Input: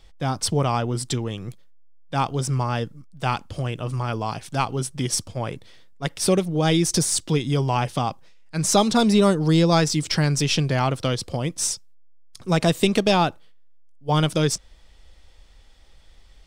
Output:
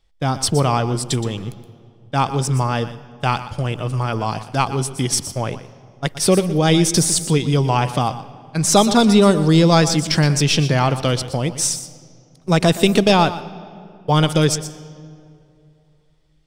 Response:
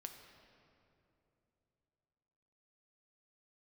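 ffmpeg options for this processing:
-filter_complex "[0:a]agate=range=-17dB:threshold=-34dB:ratio=16:detection=peak,asplit=2[a][b];[b]highshelf=f=12k:g=11.5[c];[1:a]atrim=start_sample=2205,asetrate=52920,aresample=44100,adelay=120[d];[c][d]afir=irnorm=-1:irlink=0,volume=-6.5dB[e];[a][e]amix=inputs=2:normalize=0,volume=4.5dB"

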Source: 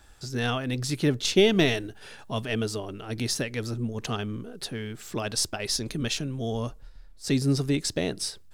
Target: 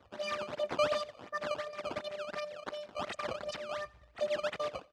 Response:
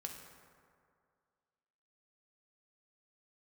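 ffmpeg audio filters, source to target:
-filter_complex "[0:a]aecho=1:1:4.8:0.89,asplit=2[a][b];[b]acompressor=threshold=-38dB:ratio=6,volume=-0.5dB[c];[a][c]amix=inputs=2:normalize=0,afftfilt=real='hypot(re,im)*cos(PI*b)':imag='0':win_size=512:overlap=0.75,aresample=11025,asoftclip=type=hard:threshold=-18dB,aresample=44100,acrusher=samples=24:mix=1:aa=0.000001:lfo=1:lforange=38.4:lforate=1.6,aecho=1:1:149|298|447:0.0708|0.0311|0.0137,asetrate=76440,aresample=44100,highpass=120,lowpass=4k,volume=-6dB"

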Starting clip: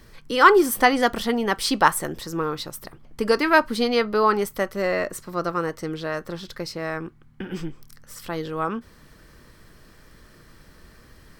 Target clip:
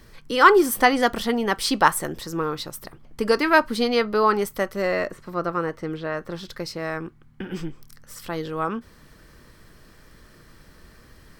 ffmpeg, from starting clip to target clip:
-filter_complex "[0:a]asettb=1/sr,asplit=3[a][b][c];[a]atrim=end=5.084[d];[b]atrim=start=5.08:end=6.32,asetpts=PTS-STARTPTS,afade=t=in:d=0.004:c=qsin,afade=t=out:st=1.236:d=0.004:c=qsin,acrossover=split=3200[e][f];[f]acompressor=threshold=-55dB:ratio=4:attack=1:release=60[g];[e][g]amix=inputs=2:normalize=0[h];[c]atrim=start=6.316[i];[d][h]acrossfade=d=0.004:c1=hsin:c2=qsin[j];[j][i]acrossfade=d=0.004:c1=qsin:c2=hsin"

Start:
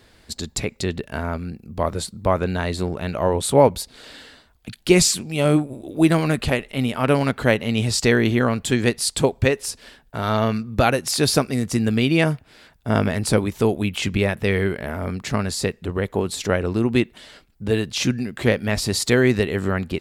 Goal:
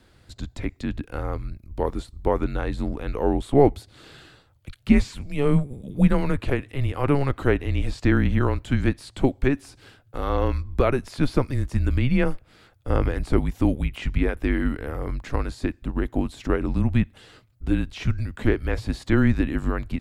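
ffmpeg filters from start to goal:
-filter_complex "[0:a]afreqshift=-140,acrossover=split=2900[a][b];[b]acompressor=threshold=-40dB:ratio=4:attack=1:release=60[c];[a][c]amix=inputs=2:normalize=0,tiltshelf=f=970:g=3,volume=-4dB"

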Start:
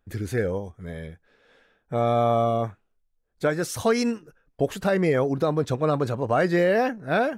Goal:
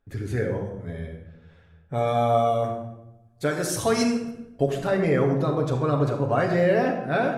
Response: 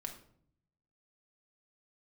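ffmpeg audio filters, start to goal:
-filter_complex "[0:a]asetnsamples=n=441:p=0,asendcmd='1.94 highshelf g 7;4.63 highshelf g -4.5',highshelf=f=4.9k:g=-7[a];[1:a]atrim=start_sample=2205,asetrate=24696,aresample=44100[b];[a][b]afir=irnorm=-1:irlink=0,volume=-1.5dB"

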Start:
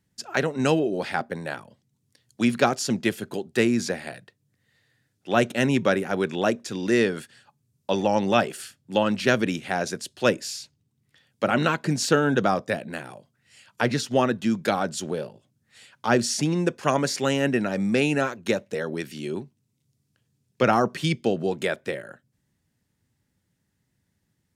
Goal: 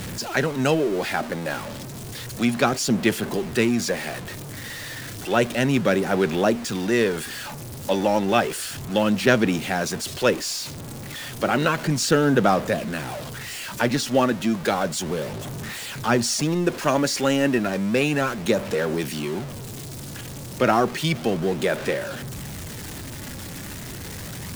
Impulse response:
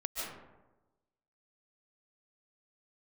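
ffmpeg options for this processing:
-af "aeval=exprs='val(0)+0.5*0.0376*sgn(val(0))':c=same,aphaser=in_gain=1:out_gain=1:delay=3.6:decay=0.25:speed=0.32:type=sinusoidal"

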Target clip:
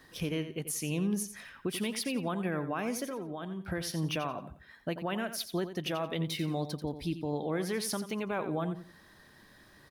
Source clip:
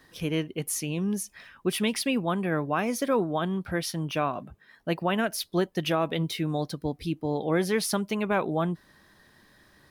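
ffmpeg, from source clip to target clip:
-filter_complex "[0:a]alimiter=limit=-24dB:level=0:latency=1:release=341,asettb=1/sr,asplit=3[a][b][c];[a]atrim=end=3.044[d];[b]atrim=start=3.04:end=3.68,asetpts=PTS-STARTPTS,afade=t=in:d=0.004:c=qsin,afade=t=out:st=0.636:d=0.004:c=qsin,acompressor=threshold=-38dB:ratio=3[e];[c]atrim=start=3.676[f];[d][e]acrossfade=d=0.004:c1=hsin:c2=qsin[g];[g][f]acrossfade=d=0.004:c1=qsin:c2=hsin,asplit=2[h][i];[i]aecho=0:1:88|176|264:0.282|0.0733|0.0191[j];[h][j]amix=inputs=2:normalize=0"

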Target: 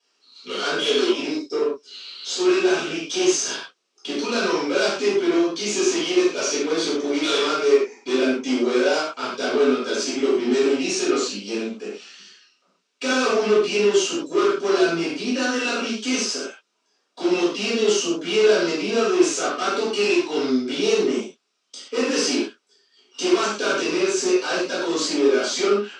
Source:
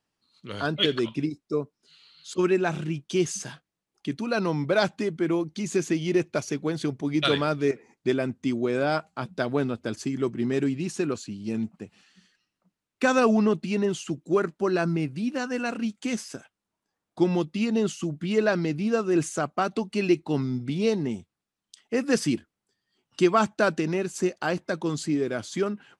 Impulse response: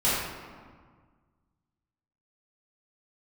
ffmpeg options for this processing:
-filter_complex "[0:a]tiltshelf=f=800:g=-8,aeval=exprs='(tanh(39.8*val(0)+0.35)-tanh(0.35))/39.8':c=same,highpass=f=260:w=0.5412,highpass=f=260:w=1.3066,equalizer=f=280:t=q:w=4:g=3,equalizer=f=400:t=q:w=4:g=9,equalizer=f=870:t=q:w=4:g=-5,equalizer=f=1.9k:t=q:w=4:g=-6,equalizer=f=5.5k:t=q:w=4:g=4,lowpass=f=7.2k:w=0.5412,lowpass=f=7.2k:w=1.3066[a];[1:a]atrim=start_sample=2205,atrim=end_sample=6174[b];[a][b]afir=irnorm=-1:irlink=0"

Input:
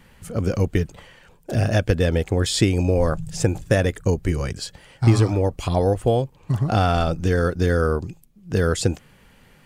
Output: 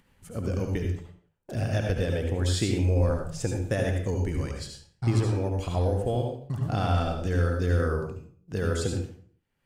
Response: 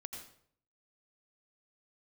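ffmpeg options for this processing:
-filter_complex "[0:a]agate=range=-31dB:threshold=-38dB:ratio=16:detection=peak,acompressor=mode=upward:threshold=-35dB:ratio=2.5[a];[1:a]atrim=start_sample=2205,asetrate=52920,aresample=44100[b];[a][b]afir=irnorm=-1:irlink=0,volume=-3dB"

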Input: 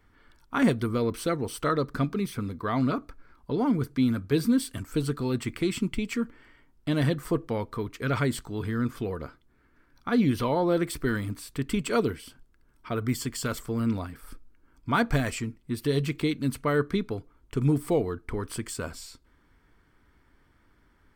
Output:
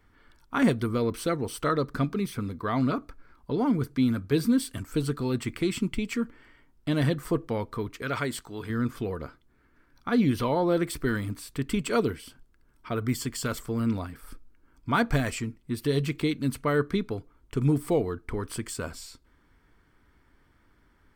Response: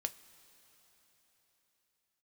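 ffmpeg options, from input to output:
-filter_complex "[0:a]asettb=1/sr,asplit=3[a][b][c];[a]atrim=end=8.024[d];[b]atrim=start=8.02:end=8.7,asetpts=PTS-STARTPTS,afade=t=in:d=0.004:c=qsin,afade=t=out:st=0.676:d=0.004:c=qsin,lowshelf=f=270:g=-10[e];[c]atrim=start=8.696[f];[d][e]acrossfade=d=0.004:c1=hsin:c2=qsin[g];[g][f]acrossfade=d=0.004:c1=qsin:c2=hsin"

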